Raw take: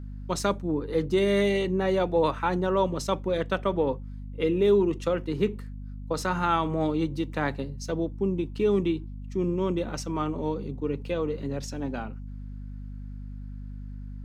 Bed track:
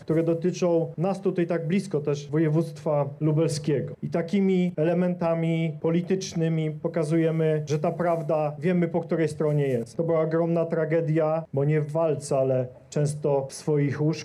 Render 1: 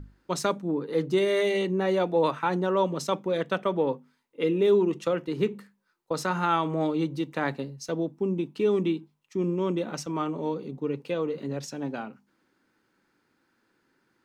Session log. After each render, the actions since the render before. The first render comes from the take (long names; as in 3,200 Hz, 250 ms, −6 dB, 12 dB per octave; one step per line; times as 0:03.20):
mains-hum notches 50/100/150/200/250 Hz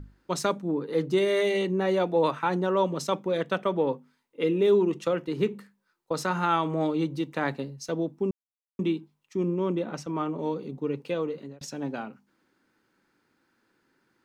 0:08.31–0:08.79: silence
0:09.43–0:10.39: high-shelf EQ 3,700 Hz −9 dB
0:11.09–0:11.61: fade out equal-power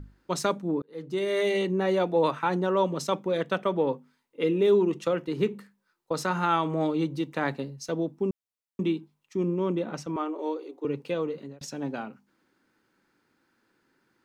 0:00.82–0:01.49: fade in
0:10.16–0:10.85: elliptic high-pass filter 310 Hz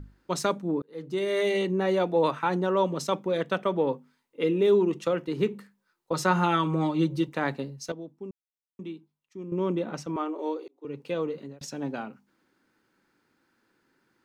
0:06.12–0:07.29: comb filter 5.5 ms, depth 82%
0:07.92–0:09.52: clip gain −11.5 dB
0:10.68–0:11.18: fade in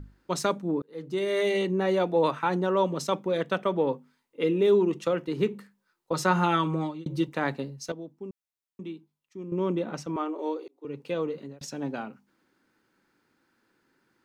0:06.55–0:07.06: fade out equal-power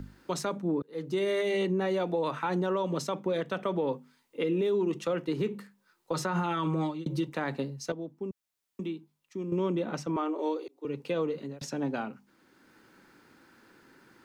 brickwall limiter −21 dBFS, peak gain reduction 10.5 dB
multiband upward and downward compressor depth 40%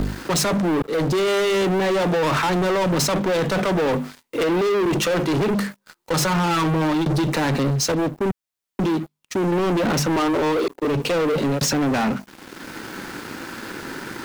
in parallel at −3 dB: compressor whose output falls as the input rises −37 dBFS, ratio −0.5
on the sum: leveller curve on the samples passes 5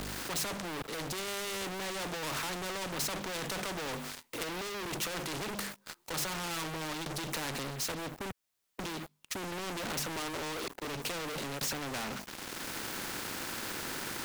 brickwall limiter −22 dBFS, peak gain reduction 5 dB
every bin compressed towards the loudest bin 2 to 1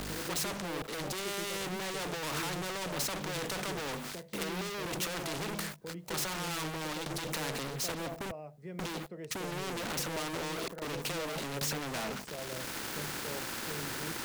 mix in bed track −20.5 dB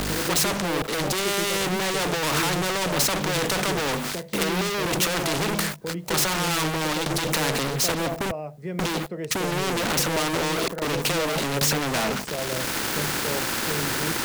level +12 dB